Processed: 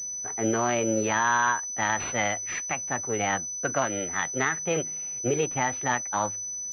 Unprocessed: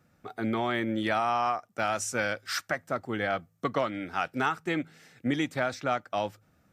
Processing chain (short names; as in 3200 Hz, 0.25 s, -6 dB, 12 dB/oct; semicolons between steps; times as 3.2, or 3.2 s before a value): formant shift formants +5 st; harmonic-percussive split percussive -4 dB; pulse-width modulation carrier 6000 Hz; gain +4.5 dB